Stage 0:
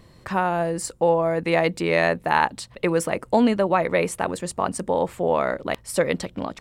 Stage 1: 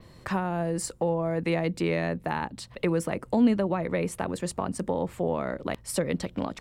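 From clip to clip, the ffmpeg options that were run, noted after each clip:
ffmpeg -i in.wav -filter_complex "[0:a]adynamicequalizer=threshold=0.00447:dfrequency=8300:dqfactor=1.3:tfrequency=8300:tqfactor=1.3:attack=5:release=100:ratio=0.375:range=1.5:mode=cutabove:tftype=bell,acrossover=split=320[link_01][link_02];[link_02]acompressor=threshold=-29dB:ratio=5[link_03];[link_01][link_03]amix=inputs=2:normalize=0" out.wav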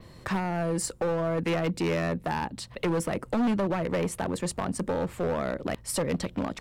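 ffmpeg -i in.wav -af "volume=24.5dB,asoftclip=hard,volume=-24.5dB,volume=2dB" out.wav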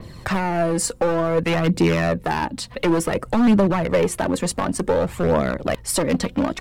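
ffmpeg -i in.wav -af "aphaser=in_gain=1:out_gain=1:delay=4.3:decay=0.42:speed=0.56:type=triangular,volume=7.5dB" out.wav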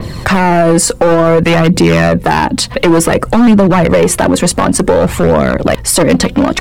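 ffmpeg -i in.wav -af "alimiter=level_in=17.5dB:limit=-1dB:release=50:level=0:latency=1,volume=-1dB" out.wav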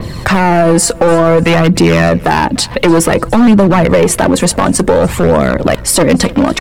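ffmpeg -i in.wav -af "aecho=1:1:296|592:0.0794|0.0262" out.wav

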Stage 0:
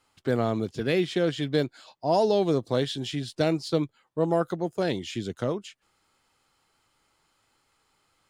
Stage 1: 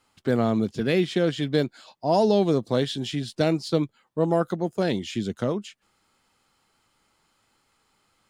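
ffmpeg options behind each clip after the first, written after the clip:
ffmpeg -i in.wav -af "equalizer=frequency=210:width=3.6:gain=6.5,volume=1.5dB" out.wav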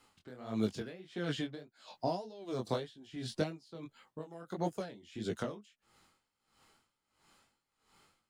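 ffmpeg -i in.wav -filter_complex "[0:a]acrossover=split=550|1500[link_01][link_02][link_03];[link_01]acompressor=threshold=-34dB:ratio=4[link_04];[link_02]acompressor=threshold=-37dB:ratio=4[link_05];[link_03]acompressor=threshold=-44dB:ratio=4[link_06];[link_04][link_05][link_06]amix=inputs=3:normalize=0,flanger=delay=17.5:depth=6.8:speed=1.7,aeval=exprs='val(0)*pow(10,-21*(0.5-0.5*cos(2*PI*1.5*n/s))/20)':channel_layout=same,volume=5dB" out.wav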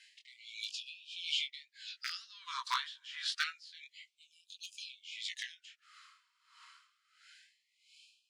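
ffmpeg -i in.wav -af "highpass=500,lowpass=5500,aeval=exprs='0.0422*(abs(mod(val(0)/0.0422+3,4)-2)-1)':channel_layout=same,afftfilt=real='re*gte(b*sr/1024,910*pow(2400/910,0.5+0.5*sin(2*PI*0.27*pts/sr)))':imag='im*gte(b*sr/1024,910*pow(2400/910,0.5+0.5*sin(2*PI*0.27*pts/sr)))':win_size=1024:overlap=0.75,volume=11.5dB" out.wav

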